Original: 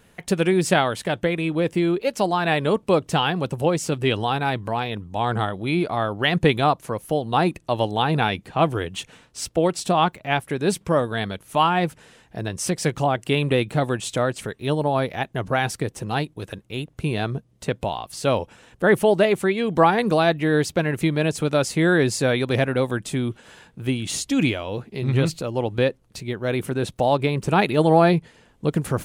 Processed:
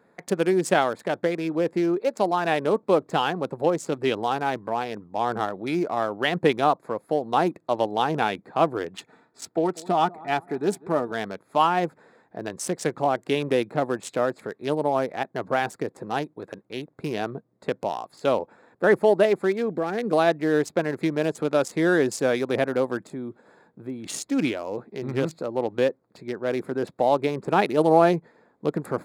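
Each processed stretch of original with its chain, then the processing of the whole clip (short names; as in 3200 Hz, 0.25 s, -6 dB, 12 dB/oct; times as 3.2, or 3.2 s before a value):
8.96–11.12 notch comb 540 Hz + darkening echo 0.194 s, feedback 40%, low-pass 1900 Hz, level -21 dB
19.71–20.13 bell 950 Hz -13.5 dB 0.64 oct + compressor 5:1, threshold -19 dBFS
23.07–24.04 bell 1900 Hz -5 dB 2.9 oct + compressor 2:1, threshold -28 dBFS
whole clip: Wiener smoothing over 15 samples; HPF 260 Hz 12 dB/oct; dynamic EQ 3100 Hz, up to -5 dB, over -36 dBFS, Q 0.81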